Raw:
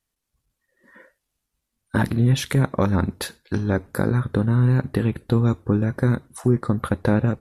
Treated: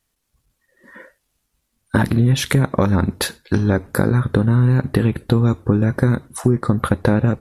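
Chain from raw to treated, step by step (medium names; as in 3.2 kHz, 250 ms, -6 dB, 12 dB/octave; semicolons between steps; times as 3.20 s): compression 4:1, threshold -20 dBFS, peak gain reduction 6.5 dB; trim +8 dB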